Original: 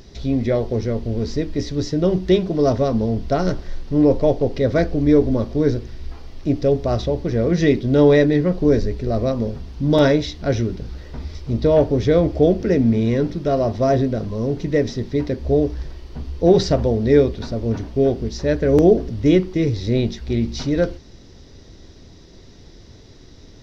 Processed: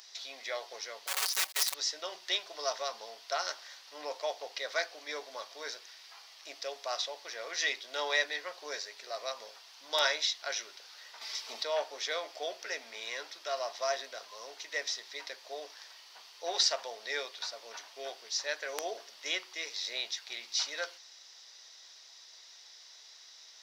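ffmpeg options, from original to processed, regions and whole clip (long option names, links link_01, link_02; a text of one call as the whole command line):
ffmpeg -i in.wav -filter_complex "[0:a]asettb=1/sr,asplit=3[link_01][link_02][link_03];[link_01]atrim=end=1.074[link_04];[link_02]atrim=start=1.07:end=1.74,asetpts=PTS-STARTPTS,afade=type=in:duration=0.004:curve=qsin,afade=type=out:start_time=0.666:duration=0.004:curve=qsin,bass=frequency=250:gain=-6,treble=frequency=4000:gain=1,acrusher=bits=5:dc=4:mix=0:aa=0.000001,aecho=1:1:5.3:0.96,atrim=end_sample=29547[link_05];[link_03]atrim=start=1.736[link_06];[link_04][link_05]acrossfade=duration=0.004:curve1=hsin:curve2=qsin[link_07];[link_07][link_06]acrossfade=duration=0.004:curve1=qsin:curve2=hsin,asettb=1/sr,asplit=3[link_08][link_09][link_10];[link_08]atrim=end=11.214[link_11];[link_09]atrim=start=11.21:end=11.63,asetpts=PTS-STARTPTS,afade=type=in:duration=0.004:curve=qsin,afade=type=out:start_time=0.416:duration=0.004:curve=qsin,equalizer=frequency=290:width=1.5:gain=4.5,aecho=1:1:4.5:0.45,atrim=end_sample=18522,acontrast=63[link_12];[link_10]atrim=start=11.626[link_13];[link_11][link_12]acrossfade=duration=0.004:curve1=hsin:curve2=qsin[link_14];[link_14][link_13]acrossfade=duration=0.004:curve1=qsin:curve2=hsin,highpass=frequency=790:width=0.5412,highpass=frequency=790:width=1.3066,highshelf=frequency=2500:gain=12,volume=-8dB" out.wav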